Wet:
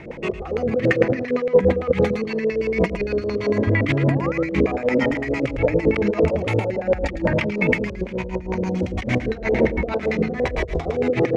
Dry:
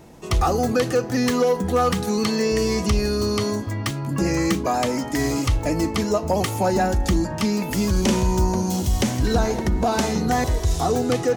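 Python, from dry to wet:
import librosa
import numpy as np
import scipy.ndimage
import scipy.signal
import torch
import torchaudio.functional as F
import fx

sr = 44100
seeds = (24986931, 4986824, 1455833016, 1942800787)

p1 = fx.high_shelf(x, sr, hz=4000.0, db=9.5)
p2 = fx.over_compress(p1, sr, threshold_db=-25.0, ratio=-0.5)
p3 = fx.filter_lfo_lowpass(p2, sr, shape='square', hz=8.8, low_hz=520.0, high_hz=2200.0, q=5.9)
p4 = fx.spec_paint(p3, sr, seeds[0], shape='rise', start_s=3.79, length_s=0.55, low_hz=220.0, high_hz=1500.0, level_db=-32.0)
p5 = p4 + fx.echo_single(p4, sr, ms=109, db=-9.0, dry=0)
p6 = fx.rotary(p5, sr, hz=6.3)
y = F.gain(torch.from_numpy(p6), 3.0).numpy()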